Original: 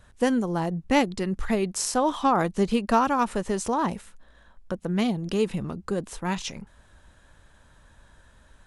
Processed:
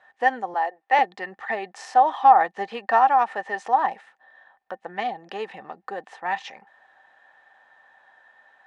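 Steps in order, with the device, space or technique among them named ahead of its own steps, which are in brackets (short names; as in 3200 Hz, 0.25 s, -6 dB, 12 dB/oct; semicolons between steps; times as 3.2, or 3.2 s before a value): tin-can telephone (BPF 630–2800 Hz; small resonant body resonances 780/1800 Hz, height 18 dB, ringing for 50 ms); 0.54–0.99 HPF 370 Hz 24 dB/oct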